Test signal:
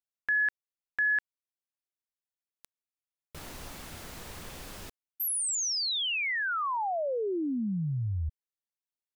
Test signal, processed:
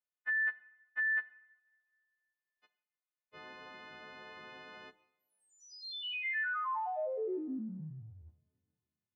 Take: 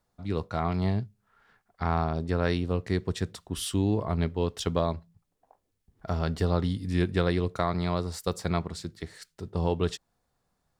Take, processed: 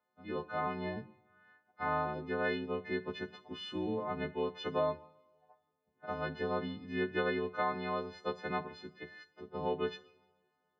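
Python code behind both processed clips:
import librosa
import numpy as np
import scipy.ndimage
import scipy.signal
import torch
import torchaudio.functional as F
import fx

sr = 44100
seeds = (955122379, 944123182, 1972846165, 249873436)

y = fx.freq_snap(x, sr, grid_st=3)
y = fx.bandpass_edges(y, sr, low_hz=250.0, high_hz=3200.0)
y = fx.air_absorb(y, sr, metres=300.0)
y = fx.rev_double_slope(y, sr, seeds[0], early_s=0.64, late_s=2.1, knee_db=-19, drr_db=12.0)
y = y * 10.0 ** (-4.5 / 20.0)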